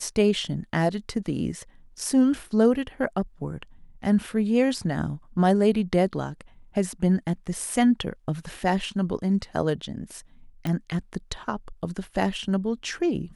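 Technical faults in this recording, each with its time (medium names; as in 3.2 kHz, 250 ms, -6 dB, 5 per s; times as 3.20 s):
10.67 s: pop -16 dBFS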